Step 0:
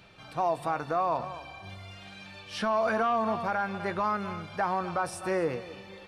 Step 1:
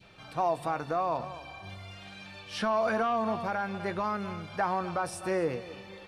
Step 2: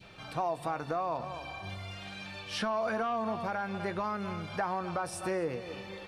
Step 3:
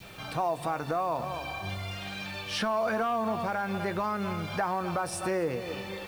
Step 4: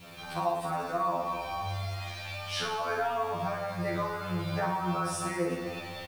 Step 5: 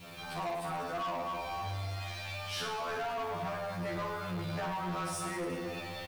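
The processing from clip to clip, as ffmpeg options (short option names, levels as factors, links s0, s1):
-af "adynamicequalizer=threshold=0.00794:dfrequency=1200:dqfactor=0.94:tfrequency=1200:tqfactor=0.94:attack=5:release=100:ratio=0.375:range=2:mode=cutabove:tftype=bell"
-af "acompressor=threshold=0.0141:ratio=2,volume=1.41"
-filter_complex "[0:a]asplit=2[s0][s1];[s1]alimiter=level_in=2:limit=0.0631:level=0:latency=1:release=81,volume=0.501,volume=0.891[s2];[s0][s2]amix=inputs=2:normalize=0,acrusher=bits=8:mix=0:aa=0.000001"
-af "aecho=1:1:50|110|182|268.4|372.1:0.631|0.398|0.251|0.158|0.1,afftfilt=real='re*2*eq(mod(b,4),0)':imag='im*2*eq(mod(b,4),0)':win_size=2048:overlap=0.75"
-af "asoftclip=type=tanh:threshold=0.0237"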